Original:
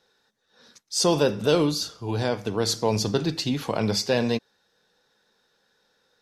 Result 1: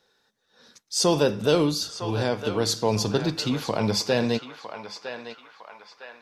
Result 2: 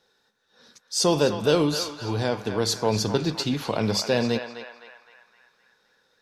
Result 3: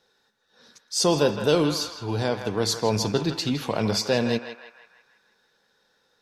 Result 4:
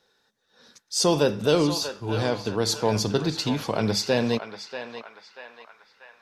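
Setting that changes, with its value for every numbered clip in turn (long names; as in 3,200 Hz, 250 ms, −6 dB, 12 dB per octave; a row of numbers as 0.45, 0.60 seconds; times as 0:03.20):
feedback echo with a band-pass in the loop, delay time: 957, 257, 162, 637 milliseconds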